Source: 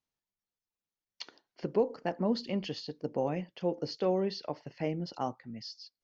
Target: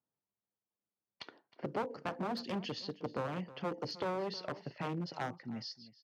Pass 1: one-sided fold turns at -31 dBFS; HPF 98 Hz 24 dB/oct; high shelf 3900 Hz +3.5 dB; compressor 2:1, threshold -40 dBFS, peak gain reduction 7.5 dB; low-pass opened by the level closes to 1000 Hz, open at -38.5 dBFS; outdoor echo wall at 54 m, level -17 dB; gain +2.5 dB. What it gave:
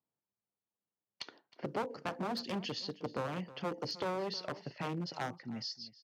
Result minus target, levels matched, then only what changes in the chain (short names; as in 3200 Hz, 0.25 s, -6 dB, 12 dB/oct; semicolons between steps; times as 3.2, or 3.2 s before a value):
8000 Hz band +5.0 dB
change: high shelf 3900 Hz -3.5 dB